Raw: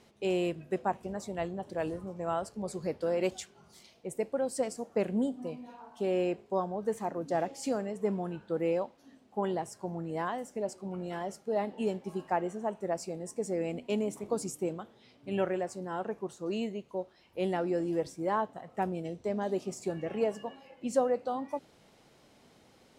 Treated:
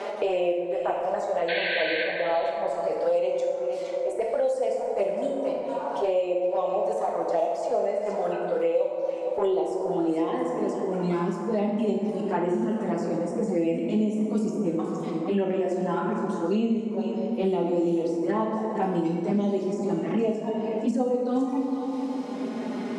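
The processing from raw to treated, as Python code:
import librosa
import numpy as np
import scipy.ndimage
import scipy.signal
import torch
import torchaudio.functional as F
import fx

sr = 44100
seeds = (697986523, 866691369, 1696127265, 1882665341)

p1 = scipy.signal.sosfilt(scipy.signal.butter(2, 8500.0, 'lowpass', fs=sr, output='sos'), x)
p2 = fx.level_steps(p1, sr, step_db=20)
p3 = p1 + (p2 * librosa.db_to_amplitude(2.0))
p4 = fx.transient(p3, sr, attack_db=-9, sustain_db=-5)
p5 = fx.filter_sweep_highpass(p4, sr, from_hz=560.0, to_hz=240.0, start_s=8.59, end_s=11.31, q=2.6)
p6 = fx.env_flanger(p5, sr, rest_ms=5.2, full_db=-22.5)
p7 = fx.spec_paint(p6, sr, seeds[0], shape='noise', start_s=1.48, length_s=0.56, low_hz=1500.0, high_hz=4500.0, level_db=-27.0)
p8 = p7 + fx.echo_single(p7, sr, ms=464, db=-14.5, dry=0)
p9 = fx.rev_plate(p8, sr, seeds[1], rt60_s=1.7, hf_ratio=0.45, predelay_ms=0, drr_db=-1.0)
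y = fx.band_squash(p9, sr, depth_pct=100)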